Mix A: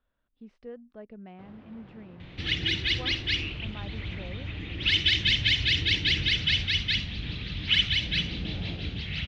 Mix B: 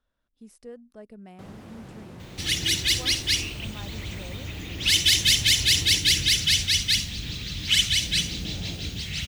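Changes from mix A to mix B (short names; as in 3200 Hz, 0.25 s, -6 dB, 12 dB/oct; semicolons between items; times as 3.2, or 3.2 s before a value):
first sound +7.5 dB; master: remove LPF 3400 Hz 24 dB/oct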